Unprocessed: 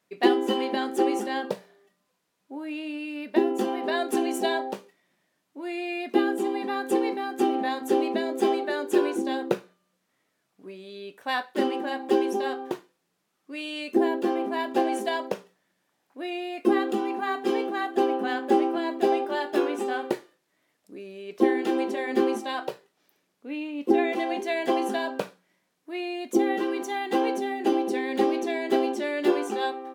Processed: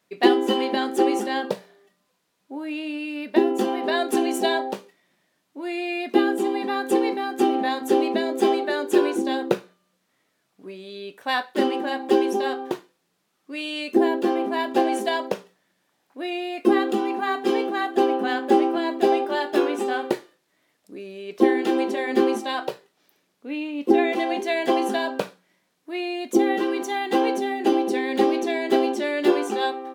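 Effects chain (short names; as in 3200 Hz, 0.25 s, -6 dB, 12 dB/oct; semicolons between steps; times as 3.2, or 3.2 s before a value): bell 3900 Hz +2 dB; gain +3.5 dB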